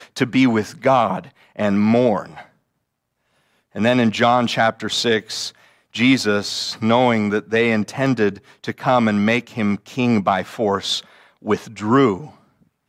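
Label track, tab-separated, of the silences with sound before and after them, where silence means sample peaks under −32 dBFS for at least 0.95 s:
2.420000	3.750000	silence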